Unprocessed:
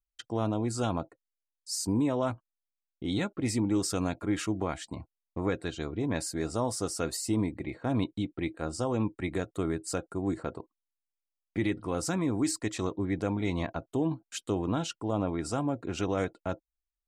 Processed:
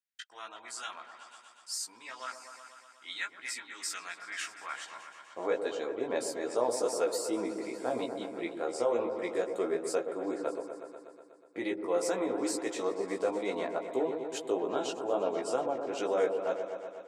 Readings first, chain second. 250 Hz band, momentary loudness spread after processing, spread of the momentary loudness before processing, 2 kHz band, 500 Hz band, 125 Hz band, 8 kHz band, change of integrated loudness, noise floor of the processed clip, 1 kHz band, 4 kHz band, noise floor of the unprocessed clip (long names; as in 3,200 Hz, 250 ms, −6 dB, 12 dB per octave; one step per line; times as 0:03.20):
−8.5 dB, 15 LU, 8 LU, +0.5 dB, +3.0 dB, −23.0 dB, −3.0 dB, −2.0 dB, −57 dBFS, 0.0 dB, −2.0 dB, below −85 dBFS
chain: high-pass filter sweep 1,700 Hz → 480 Hz, 0:04.60–0:05.58
chorus effect 2.3 Hz, delay 15 ms, depth 2.3 ms
echo whose low-pass opens from repeat to repeat 122 ms, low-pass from 750 Hz, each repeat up 1 octave, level −6 dB